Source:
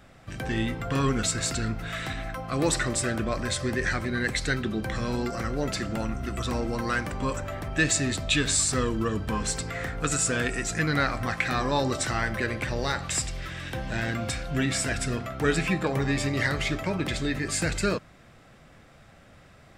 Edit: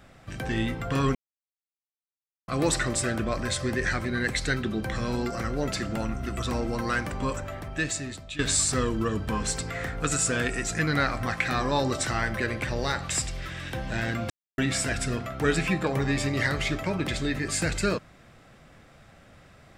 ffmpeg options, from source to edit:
-filter_complex "[0:a]asplit=6[a][b][c][d][e][f];[a]atrim=end=1.15,asetpts=PTS-STARTPTS,afade=t=out:st=1.146:d=0.004:c=hsin[g];[b]atrim=start=1.15:end=2.48,asetpts=PTS-STARTPTS,volume=0[h];[c]atrim=start=2.48:end=8.39,asetpts=PTS-STARTPTS,afade=t=in:d=0.004:c=hsin,afade=t=out:st=4.74:d=1.17:silence=0.141254[i];[d]atrim=start=8.39:end=14.3,asetpts=PTS-STARTPTS,afade=t=in:d=0.004:c=hsin:silence=0.141254,afade=t=out:st=5.906:d=0.004:c=hsin[j];[e]atrim=start=14.3:end=14.58,asetpts=PTS-STARTPTS,volume=0[k];[f]atrim=start=14.58,asetpts=PTS-STARTPTS,afade=t=in:d=0.004:c=hsin[l];[g][h][i][j][k][l]concat=n=6:v=0:a=1"

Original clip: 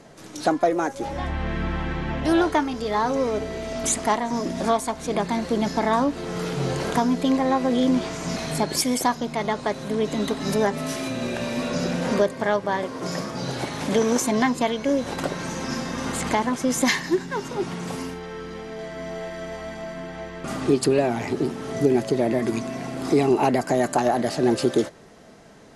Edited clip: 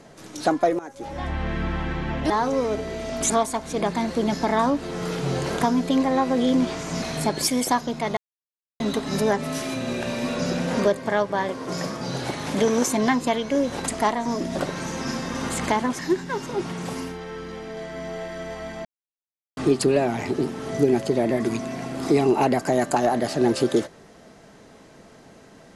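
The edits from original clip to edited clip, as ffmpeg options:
-filter_complex "[0:a]asplit=11[a][b][c][d][e][f][g][h][i][j][k];[a]atrim=end=0.79,asetpts=PTS-STARTPTS,afade=t=out:st=0.786:d=0.004:c=hsin:silence=0.125893[l];[b]atrim=start=0.79:end=2.302,asetpts=PTS-STARTPTS,afade=t=in:d=0.53:silence=0.125893[m];[c]atrim=start=2.928:end=3.932[n];[d]atrim=start=4.638:end=9.51,asetpts=PTS-STARTPTS,afade=t=out:st=4.868:d=0.004:c=hsin[o];[e]atrim=start=9.51:end=10.14,asetpts=PTS-STARTPTS,volume=0[p];[f]atrim=start=10.14:end=15.222,asetpts=PTS-STARTPTS,afade=t=in:d=0.004:c=hsin[q];[g]atrim=start=3.928:end=4.642[r];[h]atrim=start=15.218:end=16.622[s];[i]atrim=start=17.008:end=19.87,asetpts=PTS-STARTPTS,afade=t=out:st=2.858:d=0.004:c=hsin[t];[j]atrim=start=19.87:end=20.59,asetpts=PTS-STARTPTS,volume=0[u];[k]atrim=start=20.59,asetpts=PTS-STARTPTS,afade=t=in:d=0.004:c=hsin[v];[l][m]concat=n=2:v=0:a=1[w];[w][n]acrossfade=d=0.004:c1=hsin:c2=hsin[x];[o][p][q]concat=n=3:v=0:a=1[y];[x][y]acrossfade=d=0.004:c1=hsin:c2=hsin[z];[z][r]acrossfade=d=0.004:c1=hsin:c2=hsin[aa];[aa][s]acrossfade=d=0.004:c1=hsin:c2=hsin[ab];[t][u][v]concat=n=3:v=0:a=1[ac];[ab][ac]acrossfade=d=0.004:c1=hsin:c2=hsin"

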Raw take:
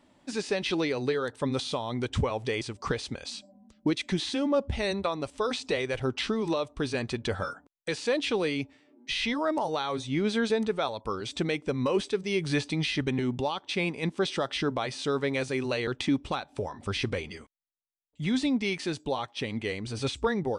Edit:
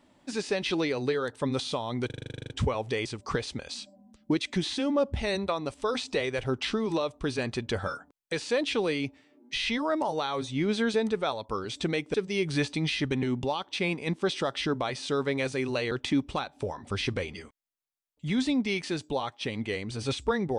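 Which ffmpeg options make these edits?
-filter_complex "[0:a]asplit=13[a][b][c][d][e][f][g][h][i][j][k][l][m];[a]atrim=end=2.102[n];[b]atrim=start=2.058:end=2.102[o];[c]atrim=start=2.058:end=2.102[p];[d]atrim=start=2.058:end=2.102[q];[e]atrim=start=2.058:end=2.102[r];[f]atrim=start=2.058:end=2.102[s];[g]atrim=start=2.058:end=2.102[t];[h]atrim=start=2.058:end=2.102[u];[i]atrim=start=2.058:end=2.102[v];[j]atrim=start=2.058:end=2.102[w];[k]atrim=start=2.058:end=2.102[x];[l]atrim=start=2.058:end=11.702[y];[m]atrim=start=12.098[z];[n][o]acrossfade=d=0.004:c1=hsin:c2=hsin[aa];[aa][p]acrossfade=d=0.004:c1=hsin:c2=hsin[ab];[ab][q]acrossfade=d=0.004:c1=hsin:c2=hsin[ac];[ac][r]acrossfade=d=0.004:c1=hsin:c2=hsin[ad];[ad][s]acrossfade=d=0.004:c1=hsin:c2=hsin[ae];[ae][t]acrossfade=d=0.004:c1=hsin:c2=hsin[af];[af][u]acrossfade=d=0.004:c1=hsin:c2=hsin[ag];[ag][v]acrossfade=d=0.004:c1=hsin:c2=hsin[ah];[ah][w]acrossfade=d=0.004:c1=hsin:c2=hsin[ai];[ai][x]acrossfade=d=0.004:c1=hsin:c2=hsin[aj];[aj][y]acrossfade=d=0.004:c1=hsin:c2=hsin[ak];[ak][z]acrossfade=d=0.004:c1=hsin:c2=hsin"

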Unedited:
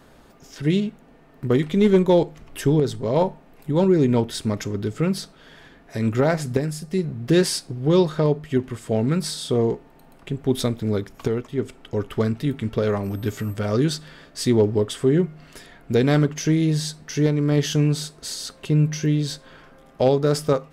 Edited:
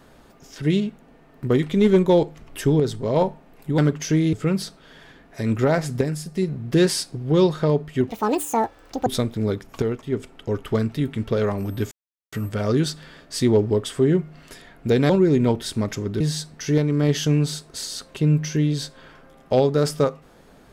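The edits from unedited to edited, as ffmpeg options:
-filter_complex "[0:a]asplit=8[a][b][c][d][e][f][g][h];[a]atrim=end=3.782[i];[b]atrim=start=16.138:end=16.692[j];[c]atrim=start=4.888:end=8.654[k];[d]atrim=start=8.65:end=10.52,asetpts=PTS-STARTPTS,asetrate=84672,aresample=44100[l];[e]atrim=start=10.516:end=13.37,asetpts=PTS-STARTPTS,afade=t=out:st=2.85:d=0.004:c=hsin,apad=pad_dur=0.41[m];[f]atrim=start=13.37:end=16.142,asetpts=PTS-STARTPTS,afade=t=in:d=0.004:c=hsin[n];[g]atrim=start=3.778:end=4.892[o];[h]atrim=start=16.688[p];[i][j]acrossfade=d=0.004:c1=hsin:c2=hsin[q];[q][k]acrossfade=d=0.004:c1=hsin:c2=hsin[r];[r][l]acrossfade=d=0.004:c1=hsin:c2=hsin[s];[m][n]concat=n=2:v=0:a=1[t];[s][t]acrossfade=d=0.004:c1=hsin:c2=hsin[u];[u][o]acrossfade=d=0.004:c1=hsin:c2=hsin[v];[v][p]acrossfade=d=0.004:c1=hsin:c2=hsin"

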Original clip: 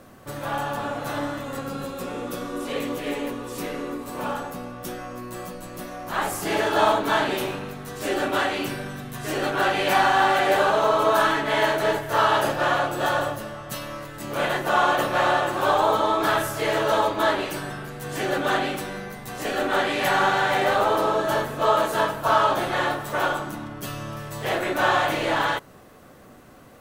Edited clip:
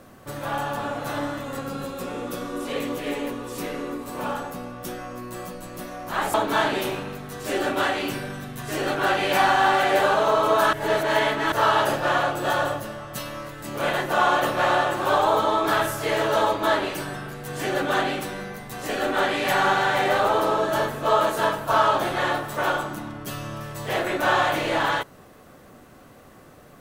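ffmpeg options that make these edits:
-filter_complex "[0:a]asplit=4[a][b][c][d];[a]atrim=end=6.342[e];[b]atrim=start=6.898:end=11.292[f];[c]atrim=start=11.288:end=12.082,asetpts=PTS-STARTPTS,areverse[g];[d]atrim=start=12.078[h];[e][f]acrossfade=d=0.004:c1=hsin:c2=hsin[i];[i][g]acrossfade=d=0.004:c1=hsin:c2=hsin[j];[j][h]acrossfade=d=0.004:c1=hsin:c2=hsin"

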